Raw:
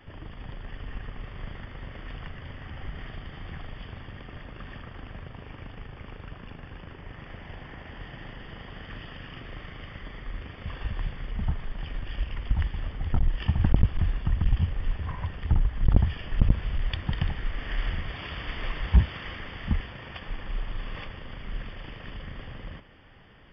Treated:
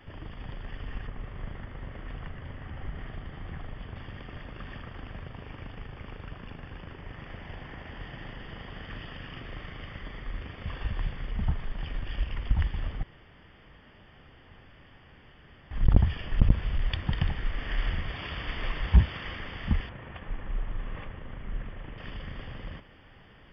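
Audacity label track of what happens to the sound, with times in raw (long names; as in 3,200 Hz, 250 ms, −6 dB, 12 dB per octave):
1.070000	3.960000	high-shelf EQ 3,200 Hz −11.5 dB
13.030000	15.710000	fill with room tone
19.890000	21.980000	high-frequency loss of the air 480 metres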